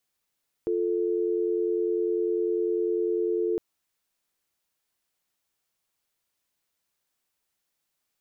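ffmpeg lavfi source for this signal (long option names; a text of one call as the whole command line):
ffmpeg -f lavfi -i "aevalsrc='0.0501*(sin(2*PI*350*t)+sin(2*PI*440*t))':duration=2.91:sample_rate=44100" out.wav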